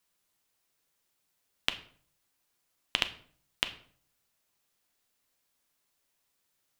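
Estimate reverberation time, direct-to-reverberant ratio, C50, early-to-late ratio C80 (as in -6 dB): 0.50 s, 8.5 dB, 15.0 dB, 18.0 dB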